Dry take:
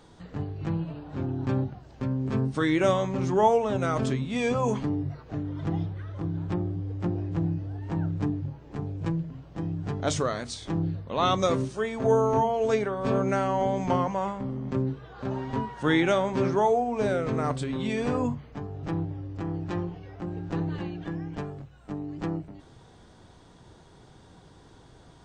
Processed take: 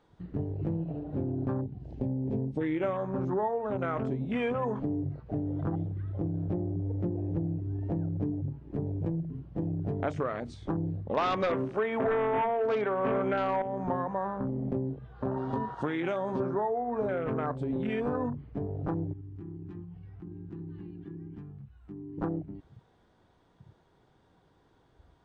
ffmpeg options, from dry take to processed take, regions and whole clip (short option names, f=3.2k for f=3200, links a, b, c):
-filter_complex "[0:a]asettb=1/sr,asplit=3[a][b][c];[a]atrim=end=1.614[d];[b]atrim=start=1.61:end=2.83,asetpts=PTS-STARTPTS,afade=t=in:d=0.004:c=qsin,afade=t=out:st=1.216:d=0.004:c=qsin,equalizer=f=1.3k:t=o:w=0.95:g=-12,acompressor=mode=upward:threshold=-35dB:ratio=2.5:attack=3.2:release=140:knee=2.83:detection=peak[e];[c]atrim=start=2.826[f];[d][e]acrossfade=d=0.004:c1=hsin:c2=qsin[g];[g][f]acrossfade=d=0.004:c1=qsin:c2=hsin,asettb=1/sr,asplit=3[h][i][j];[h]atrim=end=11.174[k];[i]atrim=start=11.17:end=13.62,asetpts=PTS-STARTPTS,afade=t=in:d=0.004:c=qsin,afade=t=out:st=2.446:d=0.004:c=qsin,highpass=f=220:p=1,acrossover=split=4500[l][m];[m]acompressor=threshold=-55dB:ratio=4:attack=1:release=60[n];[l][n]amix=inputs=2:normalize=0,aeval=exprs='0.266*sin(PI/2*2.51*val(0)/0.266)':c=same[o];[j]atrim=start=13.616[p];[k][o]acrossfade=d=0.004:c1=hsin:c2=qsin[q];[q][p]acrossfade=d=0.004:c1=qsin:c2=hsin,asettb=1/sr,asplit=3[r][s][t];[r]atrim=end=15.374[u];[s]atrim=start=15.37:end=16.4,asetpts=PTS-STARTPTS,afade=t=in:d=0.004:c=qsin,afade=t=out:st=1.026:d=0.004:c=qsin,highpass=67,highshelf=f=2.8k:t=q:w=1.5:g=8.5,acompressor=threshold=-24dB:ratio=6:attack=3.2:release=140:knee=1:detection=peak[v];[t]atrim=start=16.396[w];[u][v]acrossfade=d=0.004:c1=hsin:c2=qsin[x];[x][w]acrossfade=d=0.004:c1=qsin:c2=hsin,asettb=1/sr,asplit=3[y][z][aa];[y]atrim=end=19.134[ab];[z]atrim=start=19.13:end=22.18,asetpts=PTS-STARTPTS,afade=t=in:d=0.004:c=qsin,afade=t=out:st=3.046:d=0.004:c=qsin,equalizer=f=570:w=3.4:g=-13.5,acompressor=threshold=-45dB:ratio=3:attack=3.2:release=140:knee=1:detection=peak[ac];[aa]atrim=start=22.176[ad];[ab][ac]acrossfade=d=0.004:c1=hsin:c2=qsin[ae];[ae][ad]acrossfade=d=0.004:c1=qsin:c2=hsin,afwtdn=0.0178,bass=f=250:g=-4,treble=f=4k:g=-11,acompressor=threshold=-34dB:ratio=6,volume=6dB"